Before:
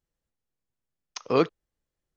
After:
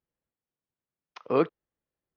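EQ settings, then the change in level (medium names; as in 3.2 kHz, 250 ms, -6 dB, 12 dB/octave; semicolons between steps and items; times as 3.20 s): high-pass 160 Hz 6 dB/octave; distance through air 380 m; 0.0 dB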